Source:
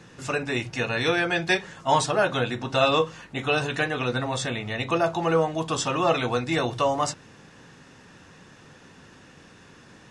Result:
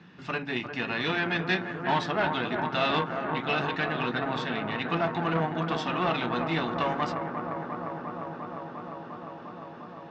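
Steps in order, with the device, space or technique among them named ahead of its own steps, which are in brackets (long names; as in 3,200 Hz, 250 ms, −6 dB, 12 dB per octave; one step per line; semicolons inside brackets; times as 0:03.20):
analogue delay pedal into a guitar amplifier (bucket-brigade delay 351 ms, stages 4,096, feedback 85%, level −7.5 dB; tube saturation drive 18 dB, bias 0.7; loudspeaker in its box 88–4,100 Hz, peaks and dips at 120 Hz −9 dB, 180 Hz +8 dB, 510 Hz −8 dB)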